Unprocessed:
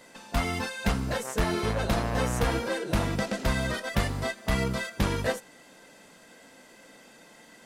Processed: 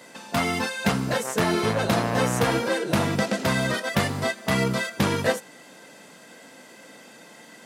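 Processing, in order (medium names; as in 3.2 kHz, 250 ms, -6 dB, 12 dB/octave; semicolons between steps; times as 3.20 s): high-pass 110 Hz 24 dB/octave; trim +5.5 dB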